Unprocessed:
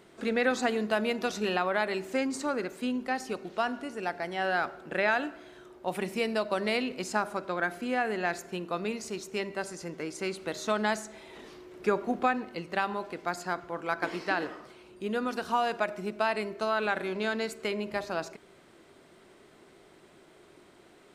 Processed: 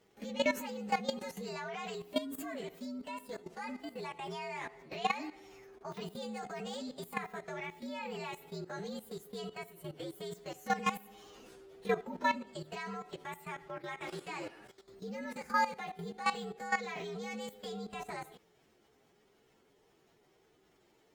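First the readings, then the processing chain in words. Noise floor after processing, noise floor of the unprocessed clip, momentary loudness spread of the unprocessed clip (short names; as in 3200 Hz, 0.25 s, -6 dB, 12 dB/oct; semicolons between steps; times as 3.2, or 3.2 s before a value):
-69 dBFS, -58 dBFS, 9 LU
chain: inharmonic rescaling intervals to 120%; level quantiser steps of 14 dB; gain +1 dB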